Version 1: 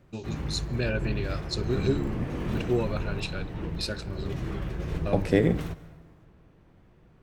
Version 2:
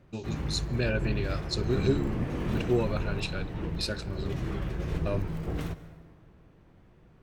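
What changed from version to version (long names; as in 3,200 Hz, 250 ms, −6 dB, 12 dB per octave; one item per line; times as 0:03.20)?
second voice: muted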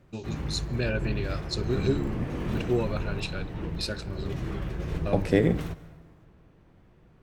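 second voice: unmuted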